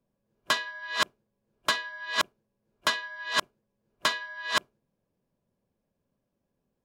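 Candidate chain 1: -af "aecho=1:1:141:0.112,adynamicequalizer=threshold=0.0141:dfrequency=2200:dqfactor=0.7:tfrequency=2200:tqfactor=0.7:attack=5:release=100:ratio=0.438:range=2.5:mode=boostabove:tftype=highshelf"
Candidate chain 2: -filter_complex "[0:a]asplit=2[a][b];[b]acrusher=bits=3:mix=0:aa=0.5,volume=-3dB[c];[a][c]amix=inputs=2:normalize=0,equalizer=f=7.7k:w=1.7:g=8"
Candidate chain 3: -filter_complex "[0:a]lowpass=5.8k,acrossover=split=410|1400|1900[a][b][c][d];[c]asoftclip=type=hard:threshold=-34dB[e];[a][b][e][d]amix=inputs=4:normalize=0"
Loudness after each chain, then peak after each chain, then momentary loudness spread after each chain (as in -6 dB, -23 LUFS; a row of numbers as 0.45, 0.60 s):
-27.5, -24.5, -30.5 LUFS; -9.5, -7.0, -11.5 dBFS; 18, 3, 4 LU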